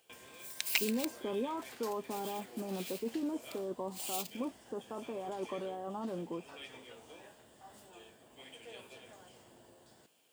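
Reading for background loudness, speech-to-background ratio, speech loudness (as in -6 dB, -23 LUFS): -42.5 LUFS, 2.5 dB, -40.0 LUFS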